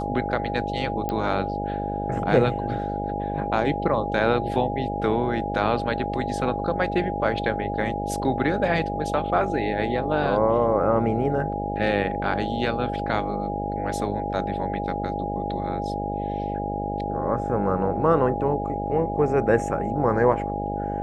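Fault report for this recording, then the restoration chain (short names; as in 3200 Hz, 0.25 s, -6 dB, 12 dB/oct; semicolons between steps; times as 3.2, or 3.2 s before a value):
buzz 50 Hz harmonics 14 -30 dBFS
tone 820 Hz -29 dBFS
1.09 pop -15 dBFS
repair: de-click; de-hum 50 Hz, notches 14; notch 820 Hz, Q 30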